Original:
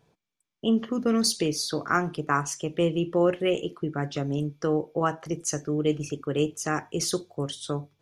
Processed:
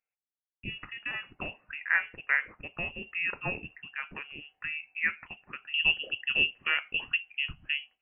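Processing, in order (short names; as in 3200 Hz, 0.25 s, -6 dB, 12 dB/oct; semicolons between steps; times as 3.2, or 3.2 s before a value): gate with hold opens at -46 dBFS; HPF 880 Hz 12 dB/oct, from 5.74 s 250 Hz; inverted band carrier 3100 Hz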